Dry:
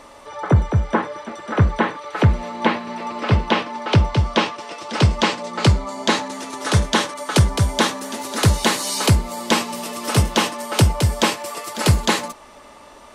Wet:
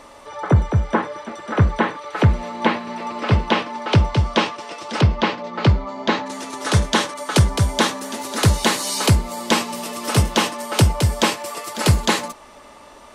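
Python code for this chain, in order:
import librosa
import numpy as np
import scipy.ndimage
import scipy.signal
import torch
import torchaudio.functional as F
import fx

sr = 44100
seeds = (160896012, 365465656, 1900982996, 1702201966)

y = fx.air_absorb(x, sr, metres=190.0, at=(5.0, 6.25), fade=0.02)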